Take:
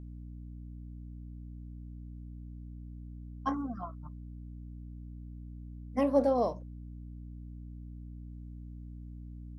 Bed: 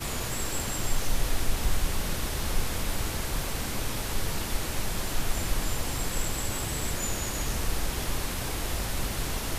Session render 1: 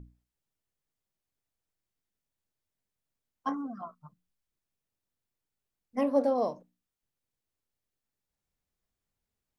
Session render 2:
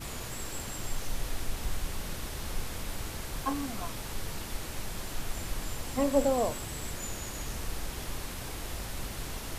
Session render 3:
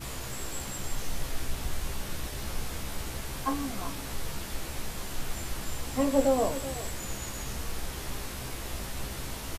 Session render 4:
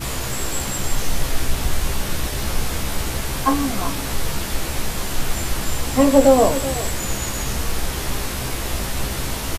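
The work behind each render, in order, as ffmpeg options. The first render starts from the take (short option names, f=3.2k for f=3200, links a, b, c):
-af "bandreject=f=60:t=h:w=6,bandreject=f=120:t=h:w=6,bandreject=f=180:t=h:w=6,bandreject=f=240:t=h:w=6,bandreject=f=300:t=h:w=6"
-filter_complex "[1:a]volume=-7dB[a];[0:a][a]amix=inputs=2:normalize=0"
-filter_complex "[0:a]asplit=2[a][b];[b]adelay=15,volume=-5dB[c];[a][c]amix=inputs=2:normalize=0,asplit=2[d][e];[e]adelay=379,volume=-14dB,highshelf=f=4k:g=-8.53[f];[d][f]amix=inputs=2:normalize=0"
-af "volume=12dB,alimiter=limit=-2dB:level=0:latency=1"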